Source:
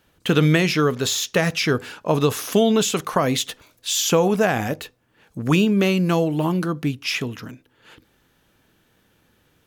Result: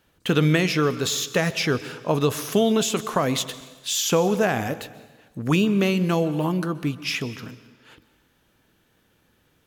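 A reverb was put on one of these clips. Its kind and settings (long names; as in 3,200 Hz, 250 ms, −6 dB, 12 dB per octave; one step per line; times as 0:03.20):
dense smooth reverb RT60 1.3 s, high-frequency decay 0.95×, pre-delay 115 ms, DRR 15.5 dB
level −2.5 dB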